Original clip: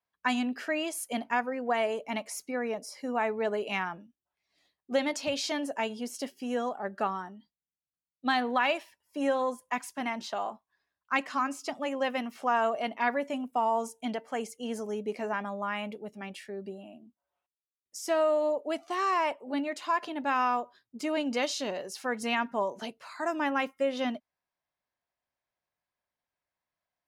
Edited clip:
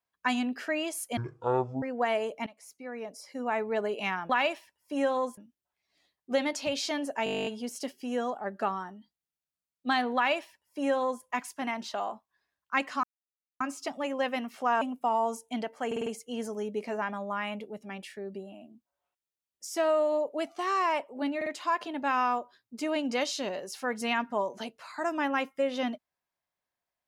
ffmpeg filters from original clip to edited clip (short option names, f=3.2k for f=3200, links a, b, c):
-filter_complex "[0:a]asplit=25[a][b][c][d][e][f][g][h][i][j][k][l][m][n][o][p][q][r][s][t][u][v][w][x][y];[a]atrim=end=1.174[z];[b]atrim=start=1.17:end=1.51,asetpts=PTS-STARTPTS,asetrate=22932,aresample=44100[aa];[c]atrim=start=1.506:end=2.15,asetpts=PTS-STARTPTS,afade=t=out:st=0.64:d=0.004:c=hsin:silence=0.0944061[ab];[d]atrim=start=2.15:end=3.982,asetpts=PTS-STARTPTS,afade=t=in:d=1.22:silence=0.0944061[ac];[e]atrim=start=8.538:end=9.622[ad];[f]atrim=start=3.978:end=5.872[ae];[g]atrim=start=5.848:end=5.872[af];[h]atrim=start=5.848:end=5.872[ag];[i]atrim=start=5.848:end=5.872[ah];[j]atrim=start=5.848:end=5.872[ai];[k]atrim=start=5.848:end=5.872[aj];[l]atrim=start=5.848:end=5.872[ak];[m]atrim=start=5.848:end=5.872[al];[n]atrim=start=5.848:end=5.872[am];[o]atrim=start=5.848:end=5.872[an];[p]atrim=start=5.848:end=5.872[ao];[q]atrim=start=5.848:end=11.42,asetpts=PTS-STARTPTS,afade=t=out:st=5.568:d=0.004:c=hsin,apad=pad_dur=0.57[ap];[r]atrim=start=11.42:end=12.632,asetpts=PTS-STARTPTS,afade=t=in:d=0.004:c=hsin[aq];[s]atrim=start=13.328:end=14.432[ar];[t]atrim=start=14.378:end=14.432[as];[u]atrim=start=14.378:end=14.432[at];[v]atrim=start=14.378:end=14.432[au];[w]atrim=start=14.378:end=19.732[av];[x]atrim=start=19.678:end=19.732[aw];[y]atrim=start=19.678[ax];[z][aa]acrossfade=d=0.004:c1=hsin:c2=hsin[ay];[ab][ac]concat=n=2:v=0:a=1[az];[ay][az]acrossfade=d=0.004:c1=hsin:c2=hsin[ba];[ba][ad]acrossfade=d=0.004:c1=hsin:c2=hsin[bb];[bb][ae]acrossfade=d=0.004:c1=hsin:c2=hsin[bc];[bc][af]acrossfade=d=0.004:c1=hsin:c2=hsin[bd];[bd][ag]acrossfade=d=0.004:c1=hsin:c2=hsin[be];[be][ah]acrossfade=d=0.004:c1=hsin:c2=hsin[bf];[bf][ai]acrossfade=d=0.004:c1=hsin:c2=hsin[bg];[bg][aj]acrossfade=d=0.004:c1=hsin:c2=hsin[bh];[bh][ak]acrossfade=d=0.004:c1=hsin:c2=hsin[bi];[bi][al]acrossfade=d=0.004:c1=hsin:c2=hsin[bj];[bj][am]acrossfade=d=0.004:c1=hsin:c2=hsin[bk];[bk][an]acrossfade=d=0.004:c1=hsin:c2=hsin[bl];[bl][ao]acrossfade=d=0.004:c1=hsin:c2=hsin[bm];[ap][aq]concat=n=2:v=0:a=1[bn];[bm][bn]acrossfade=d=0.004:c1=hsin:c2=hsin[bo];[bo][ar]acrossfade=d=0.004:c1=hsin:c2=hsin[bp];[bp][as]acrossfade=d=0.004:c1=hsin:c2=hsin[bq];[bq][at]acrossfade=d=0.004:c1=hsin:c2=hsin[br];[br][au]acrossfade=d=0.004:c1=hsin:c2=hsin[bs];[bs][av]acrossfade=d=0.004:c1=hsin:c2=hsin[bt];[bt][aw]acrossfade=d=0.004:c1=hsin:c2=hsin[bu];[bu][ax]acrossfade=d=0.004:c1=hsin:c2=hsin"